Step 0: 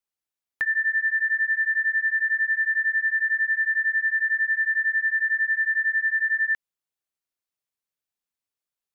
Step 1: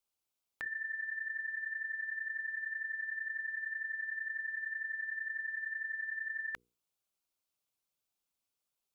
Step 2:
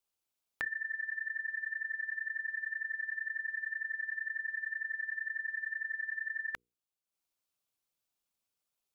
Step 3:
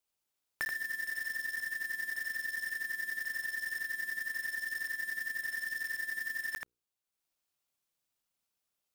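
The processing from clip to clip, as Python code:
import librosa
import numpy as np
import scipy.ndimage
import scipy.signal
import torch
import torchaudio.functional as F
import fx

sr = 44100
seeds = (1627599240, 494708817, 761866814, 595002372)

y1 = fx.peak_eq(x, sr, hz=1800.0, db=-10.5, octaves=0.33)
y1 = fx.hum_notches(y1, sr, base_hz=60, count=8)
y1 = fx.over_compress(y1, sr, threshold_db=-36.0, ratio=-0.5)
y1 = y1 * librosa.db_to_amplitude(-1.5)
y2 = fx.transient(y1, sr, attack_db=6, sustain_db=-7)
y3 = fx.block_float(y2, sr, bits=3)
y3 = y3 + 10.0 ** (-5.0 / 20.0) * np.pad(y3, (int(81 * sr / 1000.0), 0))[:len(y3)]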